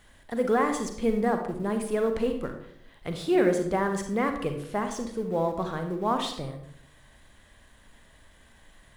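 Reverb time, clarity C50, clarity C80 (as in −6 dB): 0.70 s, 7.0 dB, 10.0 dB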